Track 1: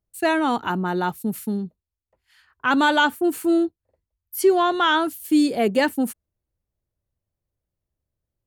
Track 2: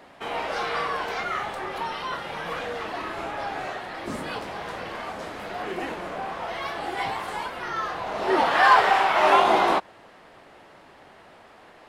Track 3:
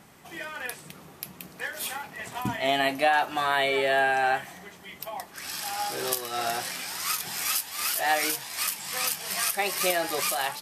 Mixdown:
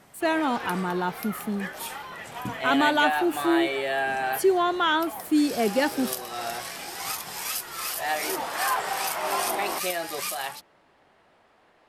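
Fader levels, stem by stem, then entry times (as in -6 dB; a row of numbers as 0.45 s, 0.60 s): -4.0 dB, -10.5 dB, -3.5 dB; 0.00 s, 0.00 s, 0.00 s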